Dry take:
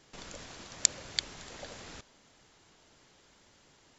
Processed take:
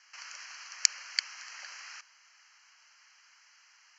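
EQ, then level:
high-pass filter 1,200 Hz 24 dB per octave
Butterworth band-reject 3,600 Hz, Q 2.7
Chebyshev low-pass filter 6,100 Hz, order 4
+6.0 dB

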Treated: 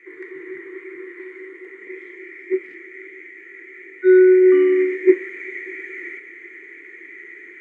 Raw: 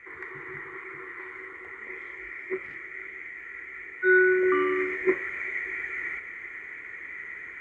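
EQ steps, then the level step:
high-pass with resonance 350 Hz, resonance Q 4.3
flat-topped bell 870 Hz −11.5 dB
0.0 dB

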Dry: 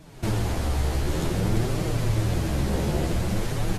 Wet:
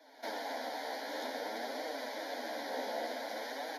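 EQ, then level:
Butterworth high-pass 250 Hz 96 dB per octave
high-shelf EQ 4,900 Hz −6.5 dB
phaser with its sweep stopped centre 1,800 Hz, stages 8
−2.0 dB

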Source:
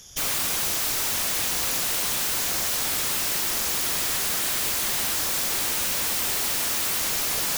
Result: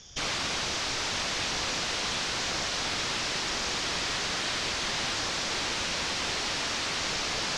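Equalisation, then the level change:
low-pass filter 5,700 Hz 24 dB per octave
0.0 dB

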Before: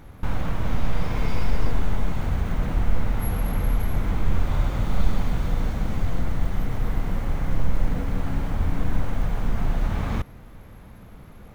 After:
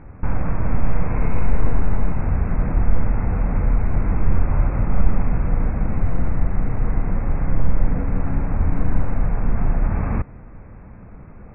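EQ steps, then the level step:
linear-phase brick-wall low-pass 2,700 Hz
high-frequency loss of the air 440 metres
+4.5 dB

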